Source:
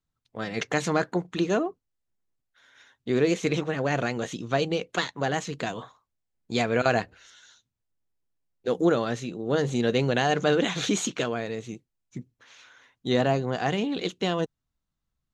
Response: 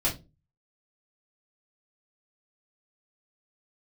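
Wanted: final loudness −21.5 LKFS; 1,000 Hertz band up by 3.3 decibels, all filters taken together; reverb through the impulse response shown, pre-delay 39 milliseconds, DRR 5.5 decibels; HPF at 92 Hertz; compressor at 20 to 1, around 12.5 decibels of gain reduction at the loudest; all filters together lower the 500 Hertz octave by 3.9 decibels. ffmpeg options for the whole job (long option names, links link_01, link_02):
-filter_complex "[0:a]highpass=92,equalizer=frequency=500:width_type=o:gain=-7.5,equalizer=frequency=1000:width_type=o:gain=8.5,acompressor=threshold=-30dB:ratio=20,asplit=2[link_01][link_02];[1:a]atrim=start_sample=2205,adelay=39[link_03];[link_02][link_03]afir=irnorm=-1:irlink=0,volume=-14.5dB[link_04];[link_01][link_04]amix=inputs=2:normalize=0,volume=14dB"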